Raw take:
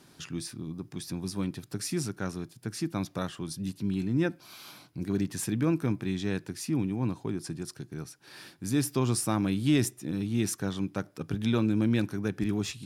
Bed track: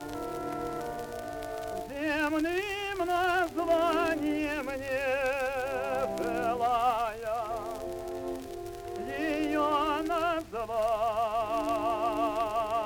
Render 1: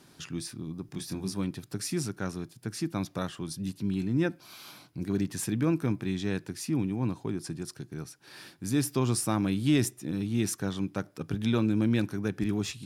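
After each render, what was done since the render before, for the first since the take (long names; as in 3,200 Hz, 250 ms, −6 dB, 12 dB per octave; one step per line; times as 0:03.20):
0:00.86–0:01.34: double-tracking delay 26 ms −6 dB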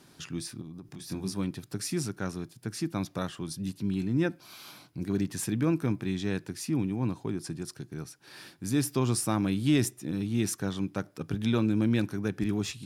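0:00.61–0:01.10: downward compressor, threshold −39 dBFS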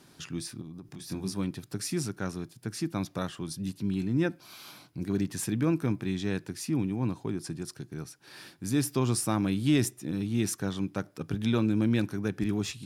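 no processing that can be heard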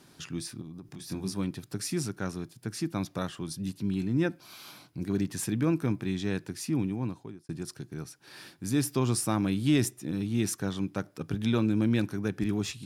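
0:06.87–0:07.49: fade out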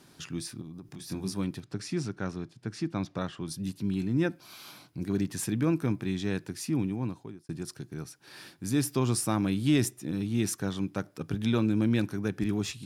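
0:01.60–0:03.48: high-frequency loss of the air 88 metres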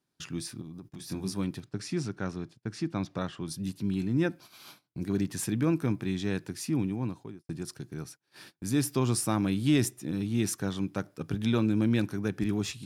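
noise gate −47 dBFS, range −25 dB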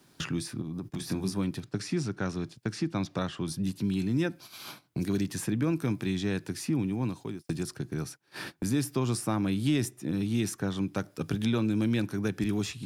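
multiband upward and downward compressor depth 70%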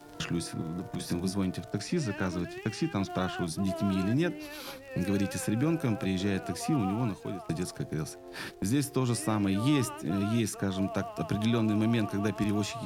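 mix in bed track −11.5 dB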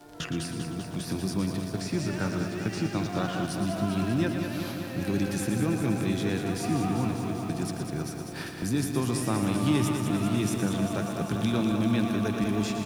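single-tap delay 115 ms −8.5 dB
feedback echo at a low word length 197 ms, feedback 80%, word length 9 bits, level −7 dB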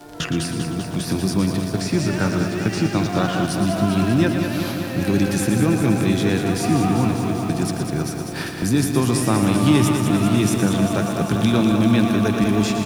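level +9 dB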